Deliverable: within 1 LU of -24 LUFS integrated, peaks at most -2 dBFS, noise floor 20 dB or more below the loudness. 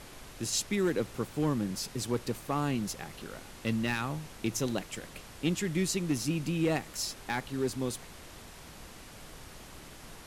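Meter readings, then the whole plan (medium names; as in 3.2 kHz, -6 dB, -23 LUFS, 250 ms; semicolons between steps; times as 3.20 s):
clipped samples 0.2%; clipping level -21.0 dBFS; noise floor -49 dBFS; noise floor target -53 dBFS; loudness -33.0 LUFS; peak level -21.0 dBFS; loudness target -24.0 LUFS
-> clip repair -21 dBFS; noise print and reduce 6 dB; trim +9 dB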